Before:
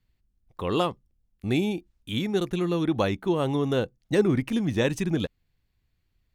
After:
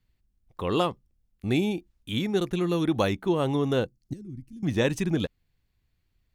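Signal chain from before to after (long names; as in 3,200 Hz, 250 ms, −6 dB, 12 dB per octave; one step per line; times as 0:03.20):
0:04.13–0:04.63: guitar amp tone stack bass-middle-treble 10-0-1
0:03.86–0:04.64: gain on a spectral selection 380–4,100 Hz −10 dB
0:02.69–0:03.13: high-shelf EQ 6,700 Hz +8 dB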